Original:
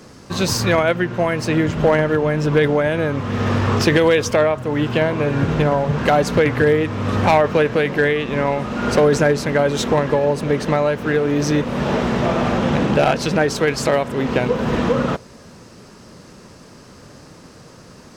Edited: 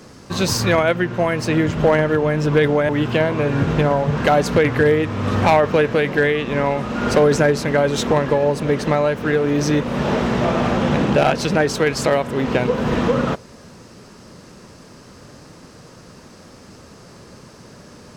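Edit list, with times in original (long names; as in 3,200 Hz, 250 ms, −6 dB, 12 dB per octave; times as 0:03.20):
0:02.89–0:04.70: remove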